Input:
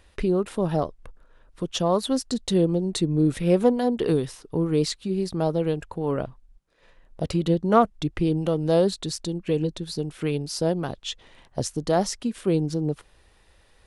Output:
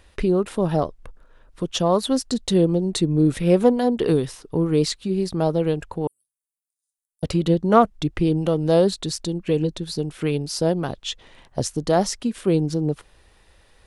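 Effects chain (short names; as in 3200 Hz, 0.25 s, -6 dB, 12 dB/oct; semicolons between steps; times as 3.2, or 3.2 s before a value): 6.07–7.23 inverse Chebyshev high-pass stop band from 2200 Hz, stop band 70 dB; gain +3 dB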